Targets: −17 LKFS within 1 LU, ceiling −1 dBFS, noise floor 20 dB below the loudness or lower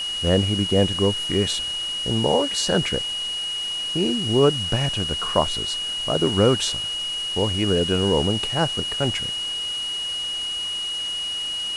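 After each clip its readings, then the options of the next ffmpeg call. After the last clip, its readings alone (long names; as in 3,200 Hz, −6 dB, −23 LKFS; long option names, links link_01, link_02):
interfering tone 2,900 Hz; level of the tone −25 dBFS; background noise floor −28 dBFS; target noise floor −42 dBFS; integrated loudness −22.0 LKFS; sample peak −4.5 dBFS; target loudness −17.0 LKFS
→ -af "bandreject=frequency=2900:width=30"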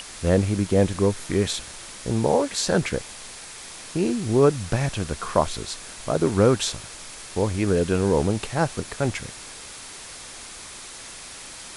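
interfering tone none found; background noise floor −40 dBFS; target noise floor −44 dBFS
→ -af "afftdn=noise_reduction=6:noise_floor=-40"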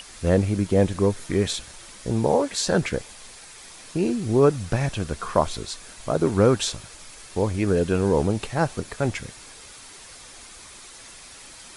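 background noise floor −45 dBFS; integrated loudness −23.5 LKFS; sample peak −5.0 dBFS; target loudness −17.0 LKFS
→ -af "volume=6.5dB,alimiter=limit=-1dB:level=0:latency=1"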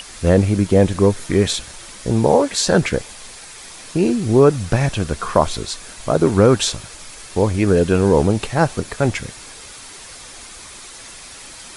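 integrated loudness −17.5 LKFS; sample peak −1.0 dBFS; background noise floor −38 dBFS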